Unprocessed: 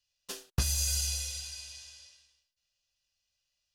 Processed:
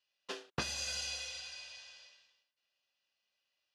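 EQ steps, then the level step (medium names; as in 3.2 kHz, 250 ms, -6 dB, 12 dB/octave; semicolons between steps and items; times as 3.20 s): band-pass 290–3000 Hz; +4.0 dB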